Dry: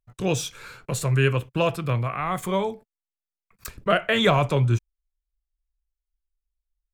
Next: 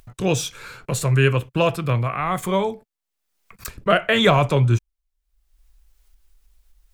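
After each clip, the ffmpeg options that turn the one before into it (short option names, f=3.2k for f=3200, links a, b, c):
-af "acompressor=mode=upward:threshold=-39dB:ratio=2.5,volume=3.5dB"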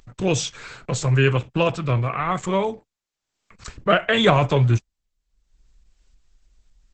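-ar 48000 -c:a libopus -b:a 10k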